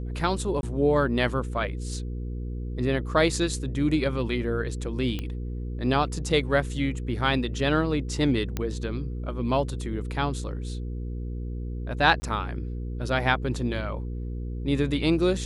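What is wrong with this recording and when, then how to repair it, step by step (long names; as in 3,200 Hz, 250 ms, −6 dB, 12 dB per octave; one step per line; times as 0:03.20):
mains hum 60 Hz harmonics 8 −32 dBFS
0:00.61–0:00.63: drop-out 21 ms
0:05.19: click −18 dBFS
0:08.57: click −14 dBFS
0:12.20–0:12.22: drop-out 20 ms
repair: click removal
hum removal 60 Hz, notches 8
repair the gap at 0:00.61, 21 ms
repair the gap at 0:12.20, 20 ms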